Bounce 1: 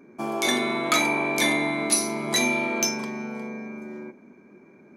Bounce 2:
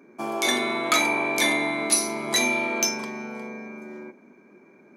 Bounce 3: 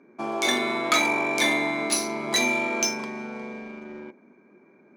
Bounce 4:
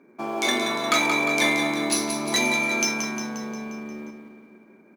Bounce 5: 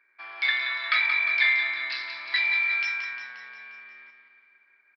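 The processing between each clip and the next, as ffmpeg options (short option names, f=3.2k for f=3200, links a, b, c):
-af "highpass=f=290:p=1,volume=1dB"
-filter_complex "[0:a]asplit=2[a][b];[b]acrusher=bits=5:mix=0:aa=0.5,volume=-9.5dB[c];[a][c]amix=inputs=2:normalize=0,adynamicsmooth=sensitivity=3.5:basefreq=4.7k,volume=-2.5dB"
-af "acrusher=bits=8:mode=log:mix=0:aa=0.000001,aecho=1:1:177|354|531|708|885|1062|1239:0.422|0.245|0.142|0.0823|0.0477|0.0277|0.0161"
-af "aresample=11025,aresample=44100,highpass=f=1.8k:t=q:w=4.1,volume=-6dB"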